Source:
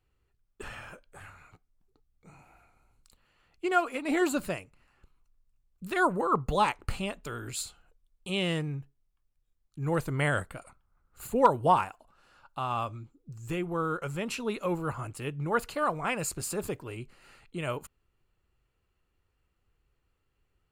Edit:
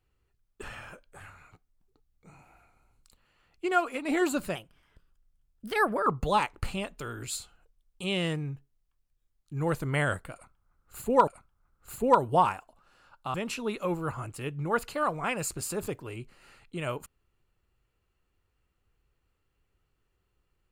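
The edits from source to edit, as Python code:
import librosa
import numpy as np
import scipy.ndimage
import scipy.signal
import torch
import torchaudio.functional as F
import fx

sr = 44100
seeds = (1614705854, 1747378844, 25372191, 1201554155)

y = fx.edit(x, sr, fx.speed_span(start_s=4.55, length_s=1.77, speed=1.17),
    fx.repeat(start_s=10.59, length_s=0.94, count=2),
    fx.cut(start_s=12.66, length_s=1.49), tone=tone)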